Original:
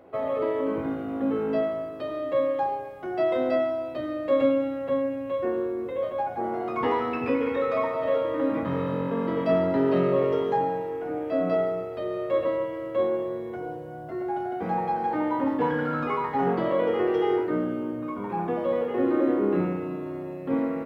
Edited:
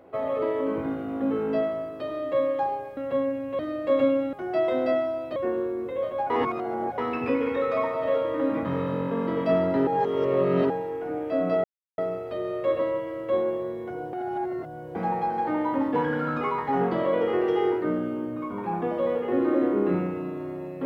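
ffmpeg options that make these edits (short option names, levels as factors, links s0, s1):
-filter_complex "[0:a]asplit=12[s0][s1][s2][s3][s4][s5][s6][s7][s8][s9][s10][s11];[s0]atrim=end=2.972[s12];[s1]atrim=start=4.738:end=5.362[s13];[s2]atrim=start=3.998:end=4.742[s14];[s3]atrim=start=2.968:end=4.002[s15];[s4]atrim=start=5.358:end=6.302[s16];[s5]atrim=start=6.298:end=6.982,asetpts=PTS-STARTPTS,areverse[s17];[s6]atrim=start=6.978:end=9.872[s18];[s7]atrim=start=9.868:end=10.702,asetpts=PTS-STARTPTS,areverse[s19];[s8]atrim=start=10.698:end=11.64,asetpts=PTS-STARTPTS,afade=t=out:st=0.938:d=0.004:c=hsin,apad=pad_dur=0.34[s20];[s9]atrim=start=11.64:end=13.792,asetpts=PTS-STARTPTS,afade=t=in:d=0.004:c=hsin[s21];[s10]atrim=start=13.788:end=14.612,asetpts=PTS-STARTPTS,areverse[s22];[s11]atrim=start=14.608[s23];[s12][s13]acrossfade=d=0.004:c1=hsin:c2=hsin[s24];[s24][s14]acrossfade=d=0.004:c1=hsin:c2=hsin[s25];[s25][s15]acrossfade=d=0.004:c1=hsin:c2=hsin[s26];[s26][s16]acrossfade=d=0.004:c1=hsin:c2=hsin[s27];[s27][s17]acrossfade=d=0.004:c1=hsin:c2=hsin[s28];[s28][s18]acrossfade=d=0.004:c1=hsin:c2=hsin[s29];[s29][s19]acrossfade=d=0.004:c1=hsin:c2=hsin[s30];[s20][s21]concat=n=2:v=0:a=1[s31];[s30][s31]acrossfade=d=0.004:c1=hsin:c2=hsin[s32];[s32][s22]acrossfade=d=0.004:c1=hsin:c2=hsin[s33];[s33][s23]acrossfade=d=0.004:c1=hsin:c2=hsin"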